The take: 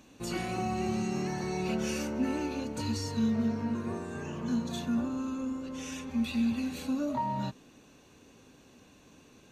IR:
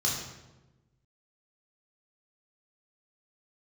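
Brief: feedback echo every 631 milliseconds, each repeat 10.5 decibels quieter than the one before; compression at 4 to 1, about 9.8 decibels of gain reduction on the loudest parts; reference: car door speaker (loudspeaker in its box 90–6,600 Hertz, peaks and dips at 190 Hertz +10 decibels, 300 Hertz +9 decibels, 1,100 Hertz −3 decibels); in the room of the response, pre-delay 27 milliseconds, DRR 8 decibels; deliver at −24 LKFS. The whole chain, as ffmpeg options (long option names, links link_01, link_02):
-filter_complex "[0:a]acompressor=threshold=-37dB:ratio=4,aecho=1:1:631|1262|1893:0.299|0.0896|0.0269,asplit=2[link_01][link_02];[1:a]atrim=start_sample=2205,adelay=27[link_03];[link_02][link_03]afir=irnorm=-1:irlink=0,volume=-16dB[link_04];[link_01][link_04]amix=inputs=2:normalize=0,highpass=90,equalizer=frequency=190:width_type=q:width=4:gain=10,equalizer=frequency=300:width_type=q:width=4:gain=9,equalizer=frequency=1100:width_type=q:width=4:gain=-3,lowpass=frequency=6600:width=0.5412,lowpass=frequency=6600:width=1.3066,volume=11dB"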